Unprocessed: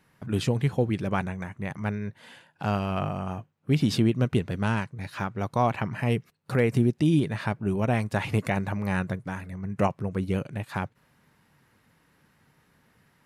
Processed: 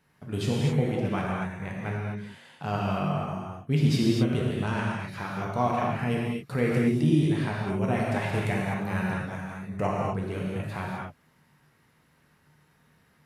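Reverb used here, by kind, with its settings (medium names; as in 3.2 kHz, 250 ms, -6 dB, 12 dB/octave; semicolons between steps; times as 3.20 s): gated-style reverb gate 280 ms flat, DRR -4 dB; trim -5.5 dB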